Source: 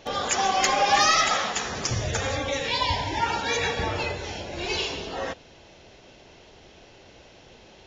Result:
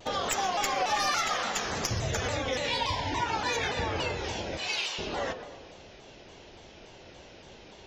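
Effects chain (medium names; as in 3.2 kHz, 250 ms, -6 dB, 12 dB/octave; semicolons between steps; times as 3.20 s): tracing distortion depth 0.023 ms; 4.57–4.99 s: high-pass 1 kHz 12 dB/octave; compression 3:1, threshold -28 dBFS, peak gain reduction 9.5 dB; tape echo 119 ms, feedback 70%, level -9 dB, low-pass 1.4 kHz; vibrato with a chosen wave saw down 3.5 Hz, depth 160 cents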